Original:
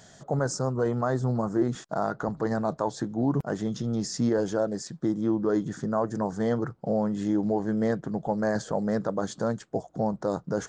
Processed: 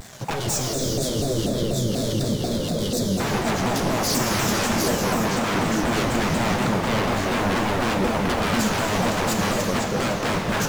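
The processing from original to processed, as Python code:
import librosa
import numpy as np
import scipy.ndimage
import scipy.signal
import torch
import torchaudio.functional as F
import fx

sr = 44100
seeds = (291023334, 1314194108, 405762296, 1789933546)

p1 = fx.leveller(x, sr, passes=3)
p2 = p1 + 10.0 ** (-9.0 / 20.0) * np.pad(p1, (int(509 * sr / 1000.0), 0))[:len(p1)]
p3 = fx.quant_dither(p2, sr, seeds[0], bits=6, dither='none')
p4 = p2 + (p3 * librosa.db_to_amplitude(-7.5))
p5 = 10.0 ** (-20.0 / 20.0) * (np.abs((p4 / 10.0 ** (-20.0 / 20.0) + 3.0) % 4.0 - 2.0) - 1.0)
p6 = fx.spec_box(p5, sr, start_s=0.37, length_s=2.83, low_hz=650.0, high_hz=3100.0, gain_db=-17)
p7 = fx.rev_gated(p6, sr, seeds[1], gate_ms=440, shape='flat', drr_db=0.0)
y = fx.vibrato_shape(p7, sr, shape='saw_down', rate_hz=4.1, depth_cents=250.0)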